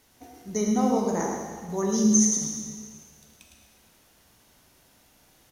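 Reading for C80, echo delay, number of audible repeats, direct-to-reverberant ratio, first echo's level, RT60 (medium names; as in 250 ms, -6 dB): 2.0 dB, 108 ms, 1, -1.0 dB, -7.5 dB, 1.8 s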